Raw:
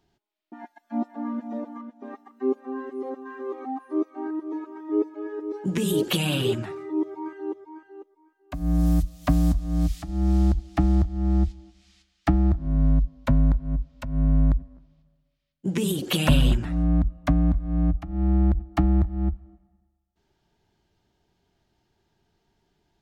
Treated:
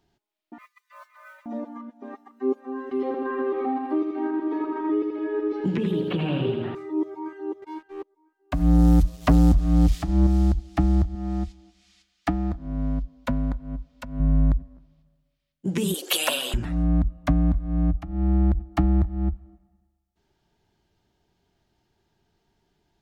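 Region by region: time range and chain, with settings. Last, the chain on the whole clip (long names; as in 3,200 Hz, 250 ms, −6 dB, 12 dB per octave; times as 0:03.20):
0:00.58–0:01.46: high-pass filter 1,400 Hz + noise that follows the level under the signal 22 dB + frequency shifter +330 Hz
0:02.91–0:06.75: high-frequency loss of the air 370 metres + repeating echo 81 ms, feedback 54%, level −6 dB + multiband upward and downward compressor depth 100%
0:07.62–0:10.27: high-shelf EQ 6,500 Hz −7.5 dB + leveller curve on the samples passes 2
0:11.15–0:14.20: low-shelf EQ 190 Hz −9.5 dB + comb filter 4.1 ms, depth 34%
0:15.94–0:16.54: high-pass filter 420 Hz 24 dB per octave + high-shelf EQ 4,600 Hz +9 dB
whole clip: no processing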